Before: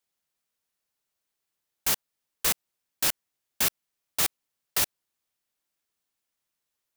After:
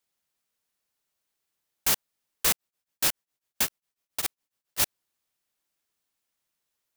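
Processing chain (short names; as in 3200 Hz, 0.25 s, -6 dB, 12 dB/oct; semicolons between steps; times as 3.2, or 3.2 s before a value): 2.51–4.8 beating tremolo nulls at 7.3 Hz; gain +1.5 dB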